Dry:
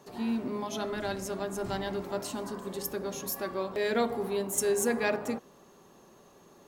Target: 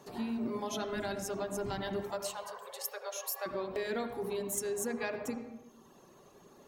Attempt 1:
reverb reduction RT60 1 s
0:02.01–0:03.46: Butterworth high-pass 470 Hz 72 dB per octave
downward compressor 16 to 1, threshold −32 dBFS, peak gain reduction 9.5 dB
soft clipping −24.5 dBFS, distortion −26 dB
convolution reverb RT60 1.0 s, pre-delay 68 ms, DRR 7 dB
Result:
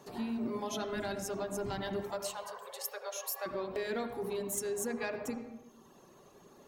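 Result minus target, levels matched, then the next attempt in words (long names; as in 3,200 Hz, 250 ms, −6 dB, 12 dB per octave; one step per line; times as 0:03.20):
soft clipping: distortion +13 dB
reverb reduction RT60 1 s
0:02.01–0:03.46: Butterworth high-pass 470 Hz 72 dB per octave
downward compressor 16 to 1, threshold −32 dBFS, peak gain reduction 9.5 dB
soft clipping −17 dBFS, distortion −39 dB
convolution reverb RT60 1.0 s, pre-delay 68 ms, DRR 7 dB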